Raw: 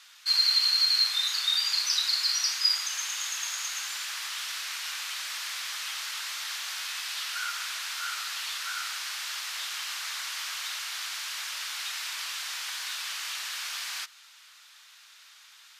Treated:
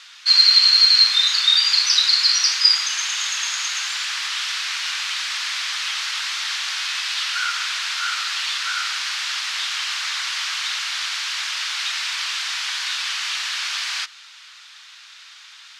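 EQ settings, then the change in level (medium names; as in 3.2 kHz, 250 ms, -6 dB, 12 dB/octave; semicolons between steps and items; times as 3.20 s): band-pass 660–5000 Hz; tilt EQ +1.5 dB/octave; +9.0 dB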